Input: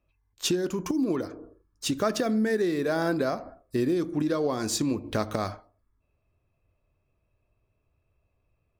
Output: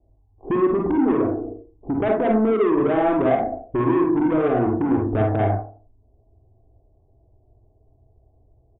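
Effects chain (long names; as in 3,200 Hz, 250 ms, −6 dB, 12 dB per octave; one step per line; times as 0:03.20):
Butterworth low-pass 890 Hz 72 dB per octave
comb filter 2.7 ms, depth 58%
0:01.34–0:01.94: dynamic equaliser 390 Hz, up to −4 dB, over −41 dBFS, Q 0.72
in parallel at 0 dB: brickwall limiter −22.5 dBFS, peak gain reduction 8.5 dB
on the sum: soft clipping −23.5 dBFS, distortion −10 dB
on a send at −1 dB: convolution reverb RT60 0.30 s, pre-delay 37 ms
on the sum: level +5.5 dB
MP3 64 kbit/s 8,000 Hz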